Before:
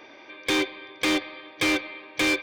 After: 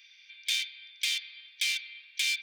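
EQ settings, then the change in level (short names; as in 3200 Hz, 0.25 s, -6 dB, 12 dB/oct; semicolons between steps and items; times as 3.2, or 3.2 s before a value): inverse Chebyshev high-pass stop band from 780 Hz, stop band 60 dB; 0.0 dB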